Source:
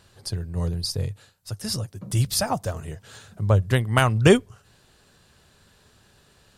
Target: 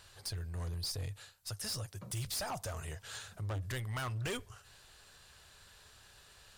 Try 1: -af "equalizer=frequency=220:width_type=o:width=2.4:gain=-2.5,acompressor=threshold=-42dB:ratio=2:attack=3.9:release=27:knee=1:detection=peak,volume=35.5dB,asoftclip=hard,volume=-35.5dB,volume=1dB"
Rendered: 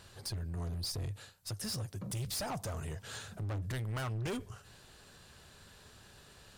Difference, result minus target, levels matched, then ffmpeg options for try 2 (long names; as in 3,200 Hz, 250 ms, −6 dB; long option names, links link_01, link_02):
250 Hz band +4.5 dB
-af "equalizer=frequency=220:width_type=o:width=2.4:gain=-14.5,acompressor=threshold=-42dB:ratio=2:attack=3.9:release=27:knee=1:detection=peak,volume=35.5dB,asoftclip=hard,volume=-35.5dB,volume=1dB"